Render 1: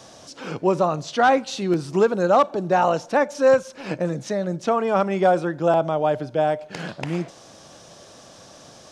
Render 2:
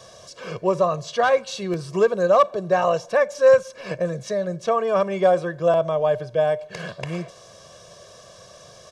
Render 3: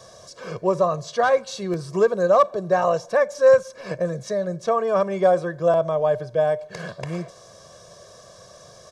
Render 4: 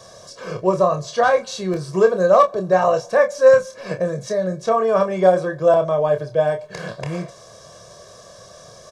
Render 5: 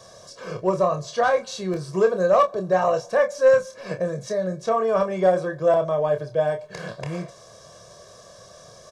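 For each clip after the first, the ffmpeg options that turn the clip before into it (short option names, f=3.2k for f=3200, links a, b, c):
-af "aecho=1:1:1.8:0.85,volume=-3dB"
-af "equalizer=f=2.8k:w=2.2:g=-7.5"
-af "aecho=1:1:27|43:0.473|0.141,volume=2.5dB"
-af "asoftclip=type=tanh:threshold=-2.5dB,volume=-3.5dB"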